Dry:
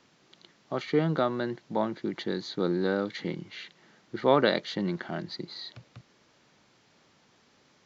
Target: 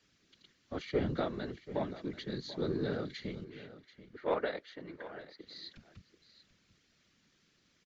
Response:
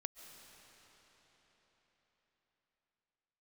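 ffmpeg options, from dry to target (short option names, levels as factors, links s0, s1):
-filter_complex "[0:a]asettb=1/sr,asplit=3[s0][s1][s2];[s0]atrim=end=3.444[s3];[s1]atrim=start=3.44:end=5.47,asetpts=PTS-STARTPTS,afade=t=in:d=0.004:c=qsin,afade=t=out:st=2.026:d=0.004:c=qsin,acrossover=split=370 2100:gain=0.0708 1 0.2[s4][s5][s6];[s4][s5][s6]amix=inputs=3:normalize=0[s7];[s2]atrim=start=5.466[s8];[s3][s7]acrossfade=d=0.004:c1=hsin:c2=qsin[s9];[s9][s8]acrossfade=d=0.004:c1=qsin:c2=hsin,afftfilt=real='hypot(re,im)*cos(2*PI*random(0))':imag='hypot(re,im)*sin(2*PI*random(1))':win_size=512:overlap=0.75,acrossover=split=240|1200[s10][s11][s12];[s11]adynamicsmooth=sensitivity=1:basefreq=500[s13];[s10][s13][s12]amix=inputs=3:normalize=0,aecho=1:1:735:0.168"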